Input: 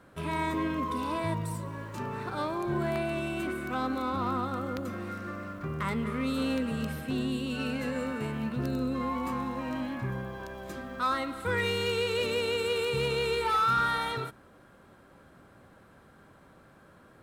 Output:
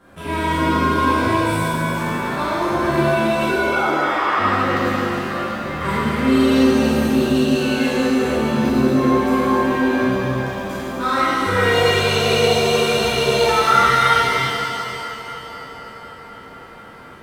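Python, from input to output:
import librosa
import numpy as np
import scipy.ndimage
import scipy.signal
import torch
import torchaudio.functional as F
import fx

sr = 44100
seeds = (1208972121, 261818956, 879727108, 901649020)

y = fx.sine_speech(x, sr, at=(3.48, 4.39))
y = fx.echo_wet_bandpass(y, sr, ms=252, feedback_pct=84, hz=770.0, wet_db=-17)
y = fx.rev_shimmer(y, sr, seeds[0], rt60_s=2.6, semitones=7, shimmer_db=-8, drr_db=-11.0)
y = F.gain(torch.from_numpy(y), 1.0).numpy()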